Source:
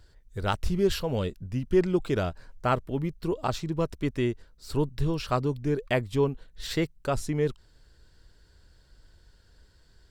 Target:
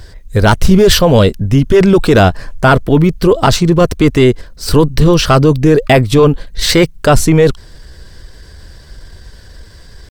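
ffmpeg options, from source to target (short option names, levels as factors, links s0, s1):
-af "asetrate=46722,aresample=44100,atempo=0.943874,apsyclip=16.8,volume=0.794"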